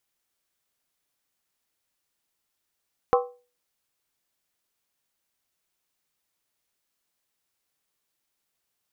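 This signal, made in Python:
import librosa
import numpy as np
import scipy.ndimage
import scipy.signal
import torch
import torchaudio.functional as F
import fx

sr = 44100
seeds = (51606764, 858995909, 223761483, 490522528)

y = fx.strike_skin(sr, length_s=0.63, level_db=-15.0, hz=490.0, decay_s=0.35, tilt_db=3.0, modes=5)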